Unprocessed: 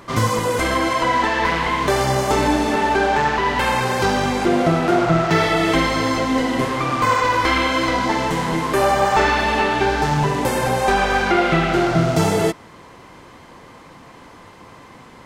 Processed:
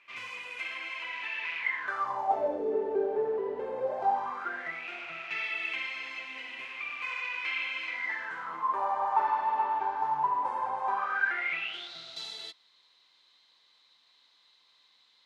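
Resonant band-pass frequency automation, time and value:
resonant band-pass, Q 10
0:01.57 2,500 Hz
0:02.65 440 Hz
0:03.72 440 Hz
0:04.85 2,500 Hz
0:07.86 2,500 Hz
0:08.78 960 Hz
0:10.90 960 Hz
0:11.91 3,900 Hz

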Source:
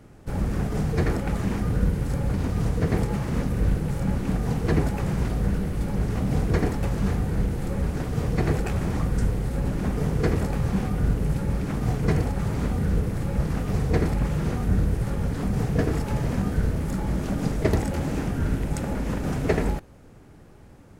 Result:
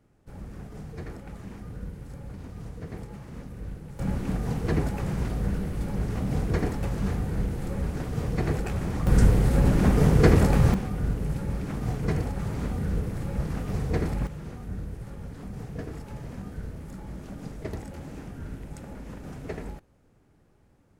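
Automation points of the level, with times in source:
−15 dB
from 0:03.99 −3.5 dB
from 0:09.07 +5.5 dB
from 0:10.74 −4.5 dB
from 0:14.27 −13 dB

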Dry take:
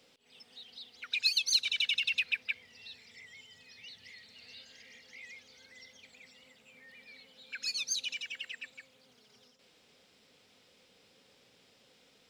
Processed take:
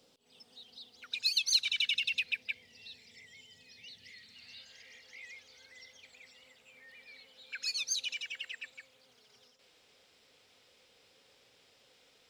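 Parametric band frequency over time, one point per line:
parametric band −9 dB 1.1 octaves
0:01.27 2,100 Hz
0:01.50 250 Hz
0:02.07 1,300 Hz
0:03.93 1,300 Hz
0:04.89 200 Hz

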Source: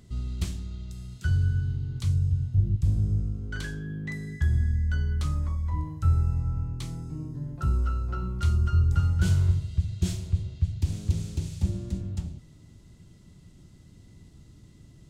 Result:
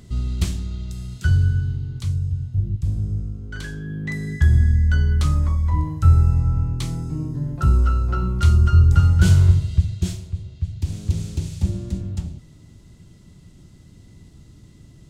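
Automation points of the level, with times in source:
0:01.24 +8 dB
0:02.21 +1 dB
0:03.51 +1 dB
0:04.32 +9 dB
0:09.76 +9 dB
0:10.32 −2 dB
0:11.23 +5 dB

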